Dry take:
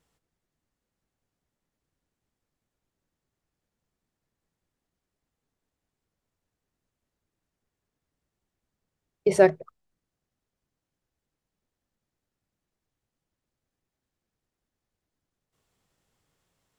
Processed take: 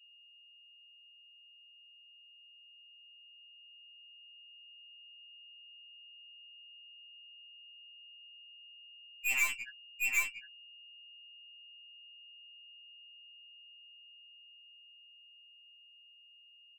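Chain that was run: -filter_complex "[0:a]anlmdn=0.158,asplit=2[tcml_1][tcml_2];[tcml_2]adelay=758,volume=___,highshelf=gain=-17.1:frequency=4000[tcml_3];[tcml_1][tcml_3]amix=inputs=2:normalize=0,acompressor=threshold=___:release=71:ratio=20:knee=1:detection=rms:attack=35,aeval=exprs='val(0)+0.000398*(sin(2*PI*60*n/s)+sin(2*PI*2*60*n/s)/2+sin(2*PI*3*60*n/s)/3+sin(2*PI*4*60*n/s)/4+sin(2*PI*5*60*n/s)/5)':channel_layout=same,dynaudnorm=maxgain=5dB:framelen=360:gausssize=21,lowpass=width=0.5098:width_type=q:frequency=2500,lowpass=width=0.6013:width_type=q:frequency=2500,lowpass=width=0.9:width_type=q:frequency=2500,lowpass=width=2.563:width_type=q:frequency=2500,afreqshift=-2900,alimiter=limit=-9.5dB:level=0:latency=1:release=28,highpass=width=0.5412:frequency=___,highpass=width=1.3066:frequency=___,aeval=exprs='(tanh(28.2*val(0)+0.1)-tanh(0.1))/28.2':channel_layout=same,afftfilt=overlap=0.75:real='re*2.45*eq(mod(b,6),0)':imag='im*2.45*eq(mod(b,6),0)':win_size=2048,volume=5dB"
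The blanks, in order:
-6dB, -21dB, 1000, 1000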